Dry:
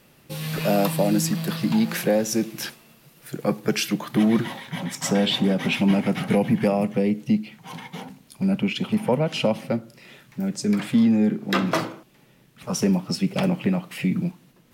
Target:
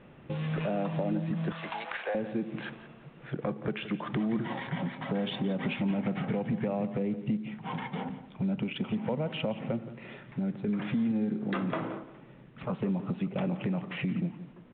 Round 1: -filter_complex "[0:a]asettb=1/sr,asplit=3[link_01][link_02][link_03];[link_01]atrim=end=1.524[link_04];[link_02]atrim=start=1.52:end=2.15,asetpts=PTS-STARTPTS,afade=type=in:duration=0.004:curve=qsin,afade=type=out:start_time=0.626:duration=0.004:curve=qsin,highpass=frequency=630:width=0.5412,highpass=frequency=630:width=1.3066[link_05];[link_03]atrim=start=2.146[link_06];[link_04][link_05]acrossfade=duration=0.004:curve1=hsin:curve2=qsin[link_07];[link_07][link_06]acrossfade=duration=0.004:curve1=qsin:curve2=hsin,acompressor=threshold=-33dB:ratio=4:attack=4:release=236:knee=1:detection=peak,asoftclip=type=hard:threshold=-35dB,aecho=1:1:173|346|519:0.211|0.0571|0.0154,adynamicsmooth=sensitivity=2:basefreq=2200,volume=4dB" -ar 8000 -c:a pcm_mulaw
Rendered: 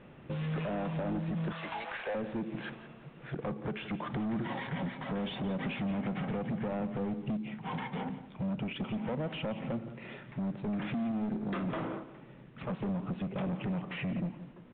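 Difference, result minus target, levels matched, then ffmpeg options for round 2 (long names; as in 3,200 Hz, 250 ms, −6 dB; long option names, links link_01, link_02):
hard clipping: distortion +23 dB
-filter_complex "[0:a]asettb=1/sr,asplit=3[link_01][link_02][link_03];[link_01]atrim=end=1.524[link_04];[link_02]atrim=start=1.52:end=2.15,asetpts=PTS-STARTPTS,afade=type=in:duration=0.004:curve=qsin,afade=type=out:start_time=0.626:duration=0.004:curve=qsin,highpass=frequency=630:width=0.5412,highpass=frequency=630:width=1.3066[link_05];[link_03]atrim=start=2.146[link_06];[link_04][link_05]acrossfade=duration=0.004:curve1=hsin:curve2=qsin[link_07];[link_07][link_06]acrossfade=duration=0.004:curve1=qsin:curve2=hsin,acompressor=threshold=-33dB:ratio=4:attack=4:release=236:knee=1:detection=peak,asoftclip=type=hard:threshold=-25.5dB,aecho=1:1:173|346|519:0.211|0.0571|0.0154,adynamicsmooth=sensitivity=2:basefreq=2200,volume=4dB" -ar 8000 -c:a pcm_mulaw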